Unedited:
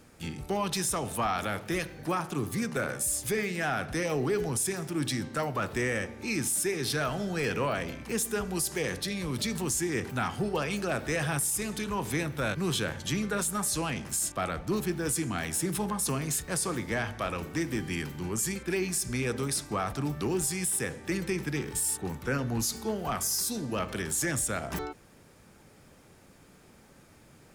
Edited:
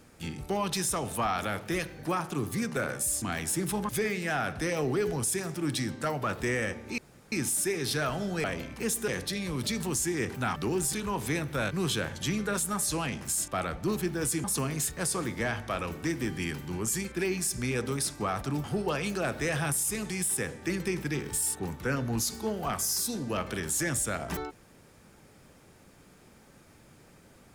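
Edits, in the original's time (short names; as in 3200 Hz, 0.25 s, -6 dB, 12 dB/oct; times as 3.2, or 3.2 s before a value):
6.31 insert room tone 0.34 s
7.43–7.73 cut
8.37–8.83 cut
10.31–11.77 swap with 20.15–20.52
15.28–15.95 move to 3.22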